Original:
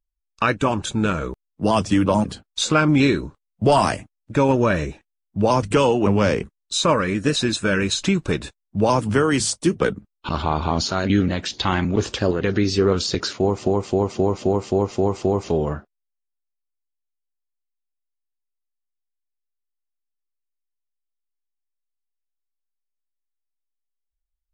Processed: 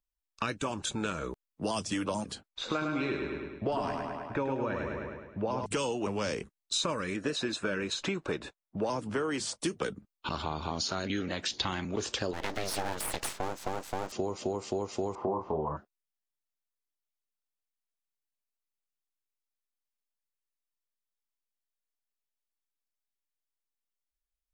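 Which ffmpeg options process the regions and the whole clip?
ffmpeg -i in.wav -filter_complex "[0:a]asettb=1/sr,asplit=3[link_01][link_02][link_03];[link_01]atrim=end=2.484[link_04];[link_02]atrim=start=2.48:end=5.66,asetpts=PTS-STARTPTS,afade=type=in:duration=0.004:curve=qsin,afade=type=out:start_time=3.176:duration=0.004:curve=qsin,lowpass=2000,equalizer=frequency=160:width=5.8:gain=-8,aecho=1:1:104|208|312|416|520|624|728:0.562|0.298|0.158|0.0837|0.0444|0.0235|0.0125,atrim=end_sample=140238[link_05];[link_03]atrim=start=5.656[link_06];[link_04][link_05]acrossfade=duration=0.004:curve1=hsin:curve2=qsin[link_07];[link_07][link_06]acrossfade=duration=0.004:curve1=qsin:curve2=hsin,asettb=1/sr,asplit=3[link_08][link_09][link_10];[link_08]atrim=end=7.164[link_11];[link_09]atrim=start=7.16:end=9.59,asetpts=PTS-STARTPTS,afade=type=in:duration=0.004:curve=qsin,afade=type=out:start_time=2.426:duration=0.004:curve=qsin,lowpass=frequency=1200:poles=1,lowshelf=frequency=190:gain=-10,acontrast=30[link_12];[link_10]atrim=start=9.586[link_13];[link_11][link_12]acrossfade=duration=0.004:curve1=hsin:curve2=qsin[link_14];[link_14][link_13]acrossfade=duration=0.004:curve1=qsin:curve2=hsin,asettb=1/sr,asplit=3[link_15][link_16][link_17];[link_15]atrim=end=12.334[link_18];[link_16]atrim=start=12.33:end=14.12,asetpts=PTS-STARTPTS,afade=type=in:duration=0.004:curve=qsin,afade=type=out:start_time=1.786:duration=0.004:curve=qsin,equalizer=frequency=61:width_type=o:width=0.77:gain=-6,aeval=exprs='abs(val(0))':channel_layout=same[link_19];[link_17]atrim=start=14.116[link_20];[link_18][link_19]acrossfade=duration=0.004:curve1=hsin:curve2=qsin[link_21];[link_21][link_20]acrossfade=duration=0.004:curve1=qsin:curve2=hsin,asettb=1/sr,asplit=3[link_22][link_23][link_24];[link_22]atrim=end=15.154[link_25];[link_23]atrim=start=15.15:end=15.77,asetpts=PTS-STARTPTS,afade=type=in:duration=0.004:curve=qsin,afade=type=out:start_time=0.616:duration=0.004:curve=qsin,lowpass=frequency=1000:width_type=q:width=5.2,asplit=2[link_26][link_27];[link_27]adelay=26,volume=-4dB[link_28];[link_26][link_28]amix=inputs=2:normalize=0,atrim=end_sample=27342[link_29];[link_24]atrim=start=15.766[link_30];[link_25][link_29]acrossfade=duration=0.004:curve1=hsin:curve2=qsin[link_31];[link_31][link_30]acrossfade=duration=0.004:curve1=qsin:curve2=hsin,lowshelf=frequency=200:gain=-7,acrossover=split=360|3900[link_32][link_33][link_34];[link_32]acompressor=threshold=-34dB:ratio=4[link_35];[link_33]acompressor=threshold=-31dB:ratio=4[link_36];[link_34]acompressor=threshold=-30dB:ratio=4[link_37];[link_35][link_36][link_37]amix=inputs=3:normalize=0,volume=-3dB" out.wav

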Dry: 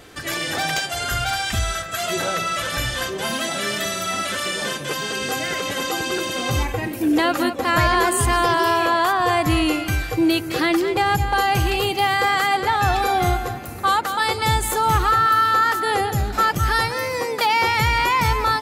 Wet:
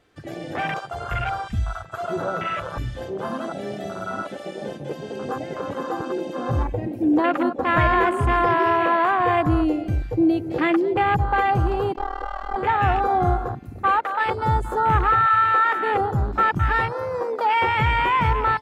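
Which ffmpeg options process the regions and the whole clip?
ffmpeg -i in.wav -filter_complex "[0:a]asettb=1/sr,asplit=3[link_01][link_02][link_03];[link_01]atrim=end=11.934[link_04];[link_02]atrim=start=11.93:end=12.56,asetpts=PTS-STARTPTS,afade=type=in:duration=0.004:curve=qsin,afade=type=out:start_time=0.626:duration=0.004:curve=qsin,acrossover=split=5600[link_05][link_06];[link_06]acompressor=threshold=-47dB:ratio=4:attack=1:release=60[link_07];[link_05][link_07]amix=inputs=2:normalize=0,tremolo=f=39:d=0.919,aeval=exprs='clip(val(0),-1,0.0299)':channel_layout=same[link_08];[link_03]atrim=start=12.556[link_09];[link_04][link_08]acrossfade=duration=0.004:curve1=hsin:curve2=qsin[link_10];[link_10][link_09]acrossfade=duration=0.004:curve1=qsin:curve2=hsin,lowpass=frequency=3400:poles=1,afwtdn=0.0708" out.wav

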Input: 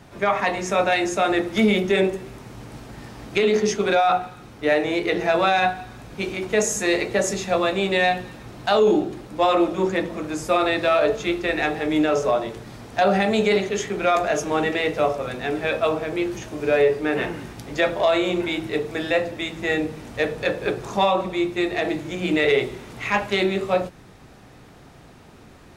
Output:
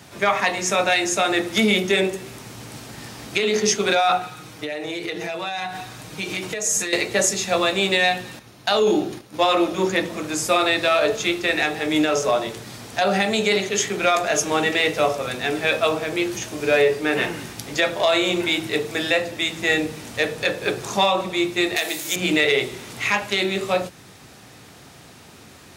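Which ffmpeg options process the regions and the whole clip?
ffmpeg -i in.wav -filter_complex "[0:a]asettb=1/sr,asplit=3[link_01][link_02][link_03];[link_01]atrim=end=4.214[link_04];[link_02]atrim=start=4.21:end=6.93,asetpts=PTS-STARTPTS,afade=type=in:duration=0.004:curve=qsin,afade=type=out:start_time=2.716:duration=0.004:curve=qsin,aecho=1:1:6.4:0.53,atrim=end_sample=119952,acompressor=threshold=-26dB:ratio=16:attack=3.2:release=140:knee=1:detection=peak[link_05];[link_03]atrim=start=6.926[link_06];[link_04][link_05]acrossfade=duration=0.004:curve1=hsin:curve2=qsin[link_07];[link_07][link_06]acrossfade=duration=0.004:curve1=qsin:curve2=hsin,asettb=1/sr,asplit=3[link_08][link_09][link_10];[link_08]atrim=end=8.394[link_11];[link_09]atrim=start=8.39:end=10.03,asetpts=PTS-STARTPTS,afade=type=in:duration=0.004:curve=qsin,afade=type=out:start_time=1.636:duration=0.004:curve=qsin,agate=range=-9dB:threshold=-37dB:ratio=16:release=100:detection=peak,bandreject=frequency=7800:width=7.5[link_12];[link_10]atrim=start=10.026[link_13];[link_11][link_12]acrossfade=duration=0.004:curve1=hsin:curve2=qsin[link_14];[link_14][link_13]acrossfade=duration=0.004:curve1=qsin:curve2=hsin,asettb=1/sr,asplit=3[link_15][link_16][link_17];[link_15]atrim=end=21.764[link_18];[link_16]atrim=start=21.76:end=22.16,asetpts=PTS-STARTPTS,afade=type=in:duration=0.004:curve=qsin,afade=type=out:start_time=0.396:duration=0.004:curve=qsin,highpass=46,aemphasis=mode=production:type=riaa[link_19];[link_17]atrim=start=22.156[link_20];[link_18][link_19]acrossfade=duration=0.004:curve1=hsin:curve2=qsin[link_21];[link_21][link_20]acrossfade=duration=0.004:curve1=qsin:curve2=hsin,highpass=frequency=68:width=0.5412,highpass=frequency=68:width=1.3066,highshelf=frequency=2400:gain=12,alimiter=limit=-7.5dB:level=0:latency=1:release=354" out.wav

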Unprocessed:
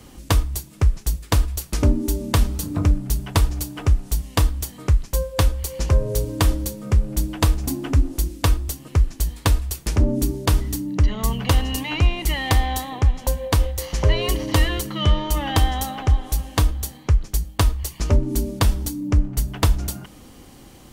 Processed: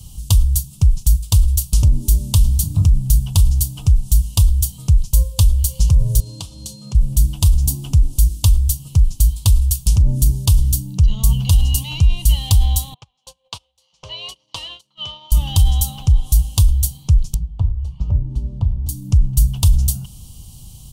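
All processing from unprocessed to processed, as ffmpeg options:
ffmpeg -i in.wav -filter_complex "[0:a]asettb=1/sr,asplit=3[link_01][link_02][link_03];[link_01]atrim=end=6.204[link_04];[link_02]atrim=start=6.2:end=6.95,asetpts=PTS-STARTPTS,afade=type=in:duration=0.004:curve=qsin,afade=type=out:start_time=0.746:duration=0.004:curve=qsin,aeval=exprs='val(0)+0.00447*sin(2*PI*4200*n/s)':channel_layout=same,acompressor=threshold=-22dB:ratio=12:attack=3.2:release=140:knee=1:detection=peak,highpass=210,lowpass=6500[link_05];[link_03]atrim=start=6.946[link_06];[link_04][link_05]acrossfade=duration=0.004:curve1=hsin:curve2=qsin[link_07];[link_07][link_06]acrossfade=duration=0.004:curve1=qsin:curve2=hsin,asettb=1/sr,asplit=3[link_08][link_09][link_10];[link_08]atrim=end=12.944[link_11];[link_09]atrim=start=12.94:end=15.32,asetpts=PTS-STARTPTS,afade=type=in:duration=0.004:curve=qsin,afade=type=out:start_time=2.376:duration=0.004:curve=qsin,highpass=650,lowpass=3300,agate=range=-22dB:threshold=-32dB:ratio=16:release=100:detection=peak[link_12];[link_10]atrim=start=15.316[link_13];[link_11][link_12]acrossfade=duration=0.004:curve1=hsin:curve2=qsin[link_14];[link_14][link_13]acrossfade=duration=0.004:curve1=qsin:curve2=hsin,asettb=1/sr,asplit=3[link_15][link_16][link_17];[link_15]atrim=end=17.344[link_18];[link_16]atrim=start=17.34:end=18.89,asetpts=PTS-STARTPTS,afade=type=in:duration=0.004:curve=qsin,afade=type=out:start_time=1.546:duration=0.004:curve=qsin,lowpass=1500,acrossover=split=140|880[link_19][link_20][link_21];[link_19]acompressor=threshold=-27dB:ratio=4[link_22];[link_20]acompressor=threshold=-28dB:ratio=4[link_23];[link_21]acompressor=threshold=-46dB:ratio=4[link_24];[link_22][link_23][link_24]amix=inputs=3:normalize=0,bandreject=frequency=50:width_type=h:width=6,bandreject=frequency=100:width_type=h:width=6,bandreject=frequency=150:width_type=h:width=6,bandreject=frequency=200:width_type=h:width=6,bandreject=frequency=250:width_type=h:width=6,bandreject=frequency=300:width_type=h:width=6,bandreject=frequency=350:width_type=h:width=6,bandreject=frequency=400:width_type=h:width=6,bandreject=frequency=450:width_type=h:width=6[link_25];[link_17]atrim=start=18.886[link_26];[link_18][link_25]acrossfade=duration=0.004:curve1=hsin:curve2=qsin[link_27];[link_27][link_26]acrossfade=duration=0.004:curve1=qsin:curve2=hsin,bass=frequency=250:gain=14,treble=frequency=4000:gain=-1,alimiter=limit=-3dB:level=0:latency=1:release=23,firequalizer=gain_entry='entry(140,0);entry(270,-16);entry(920,-4);entry(1800,-23);entry(2900,5);entry(9200,14);entry(13000,12)':delay=0.05:min_phase=1,volume=-2.5dB" out.wav

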